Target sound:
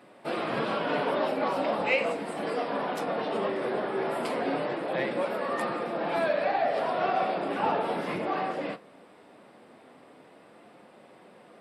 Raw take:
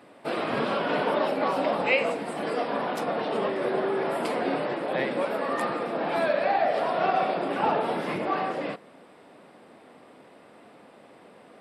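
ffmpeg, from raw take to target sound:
-filter_complex "[0:a]asplit=2[s0][s1];[s1]asoftclip=type=tanh:threshold=0.0944,volume=0.299[s2];[s0][s2]amix=inputs=2:normalize=0,flanger=delay=5.4:depth=5.4:regen=-58:speed=0.18:shape=sinusoidal"

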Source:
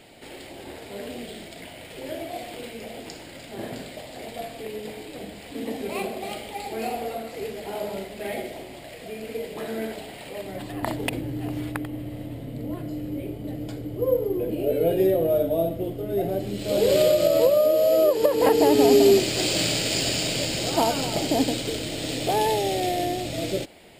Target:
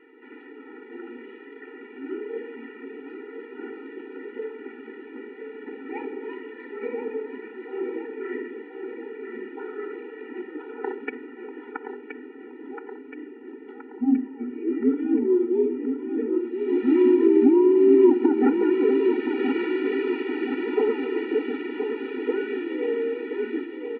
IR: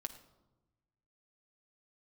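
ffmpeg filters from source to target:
-filter_complex "[0:a]aecho=1:1:1023|2046|3069|4092|5115|6138|7161:0.447|0.25|0.14|0.0784|0.0439|0.0246|0.0138,asplit=2[s0][s1];[1:a]atrim=start_sample=2205,lowpass=5700[s2];[s1][s2]afir=irnorm=-1:irlink=0,volume=0.562[s3];[s0][s3]amix=inputs=2:normalize=0,highpass=f=190:t=q:w=0.5412,highpass=f=190:t=q:w=1.307,lowpass=f=2400:t=q:w=0.5176,lowpass=f=2400:t=q:w=0.7071,lowpass=f=2400:t=q:w=1.932,afreqshift=-250,afftfilt=real='re*eq(mod(floor(b*sr/1024/250),2),1)':imag='im*eq(mod(floor(b*sr/1024/250),2),1)':win_size=1024:overlap=0.75"

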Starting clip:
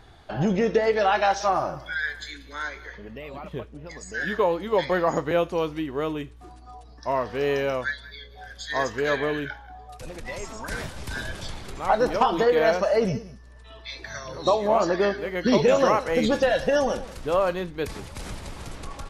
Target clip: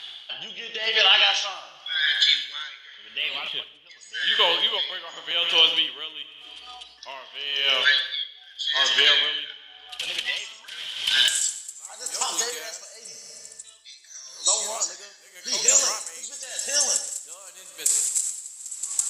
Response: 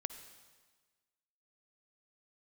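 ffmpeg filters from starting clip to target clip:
-filter_complex "[0:a]asetnsamples=n=441:p=0,asendcmd='11.28 bandpass f 7700',bandpass=f=3100:t=q:w=9.3:csg=0,aemphasis=mode=production:type=50kf[s0];[1:a]atrim=start_sample=2205[s1];[s0][s1]afir=irnorm=-1:irlink=0,alimiter=level_in=63.1:limit=0.891:release=50:level=0:latency=1,aeval=exprs='val(0)*pow(10,-18*(0.5-0.5*cos(2*PI*0.89*n/s))/20)':c=same,volume=0.562"

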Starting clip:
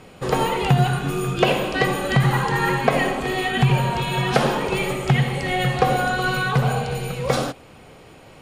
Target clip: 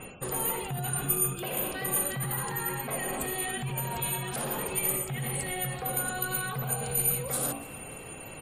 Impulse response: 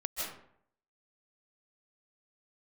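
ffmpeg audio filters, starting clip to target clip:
-filter_complex "[1:a]atrim=start_sample=2205,atrim=end_sample=3087,asetrate=24255,aresample=44100[s0];[0:a][s0]afir=irnorm=-1:irlink=0,aeval=exprs='val(0)+0.00316*sin(2*PI*2700*n/s)':c=same,bandreject=f=56.12:t=h:w=4,bandreject=f=112.24:t=h:w=4,bandreject=f=168.36:t=h:w=4,bandreject=f=224.48:t=h:w=4,bandreject=f=280.6:t=h:w=4,bandreject=f=336.72:t=h:w=4,bandreject=f=392.84:t=h:w=4,bandreject=f=448.96:t=h:w=4,bandreject=f=505.08:t=h:w=4,bandreject=f=561.2:t=h:w=4,bandreject=f=617.32:t=h:w=4,bandreject=f=673.44:t=h:w=4,bandreject=f=729.56:t=h:w=4,bandreject=f=785.68:t=h:w=4,bandreject=f=841.8:t=h:w=4,bandreject=f=897.92:t=h:w=4,bandreject=f=954.04:t=h:w=4,bandreject=f=1010.16:t=h:w=4,bandreject=f=1066.28:t=h:w=4,bandreject=f=1122.4:t=h:w=4,bandreject=f=1178.52:t=h:w=4,areverse,acompressor=threshold=0.0398:ratio=8,areverse,alimiter=level_in=1.41:limit=0.0631:level=0:latency=1:release=12,volume=0.708,afftfilt=real='re*gte(hypot(re,im),0.00282)':imag='im*gte(hypot(re,im),0.00282)':win_size=1024:overlap=0.75,highshelf=f=7800:g=3.5,aecho=1:1:288|576|864|1152:0.0891|0.0472|0.025|0.0133,aexciter=amount=12.6:drive=7.3:freq=8200"

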